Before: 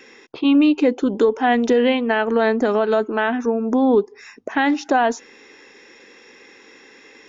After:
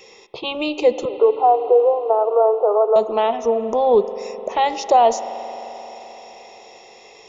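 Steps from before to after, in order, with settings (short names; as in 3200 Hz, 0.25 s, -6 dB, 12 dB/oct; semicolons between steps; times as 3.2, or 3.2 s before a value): 1.05–2.96 Chebyshev band-pass 380–1400 Hz, order 5; fixed phaser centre 660 Hz, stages 4; reverb RT60 4.5 s, pre-delay 43 ms, DRR 11.5 dB; gain +5.5 dB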